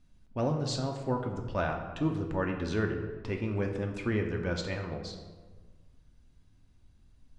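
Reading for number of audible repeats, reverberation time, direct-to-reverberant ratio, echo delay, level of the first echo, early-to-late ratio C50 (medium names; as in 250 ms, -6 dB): no echo, 1.4 s, 2.0 dB, no echo, no echo, 6.5 dB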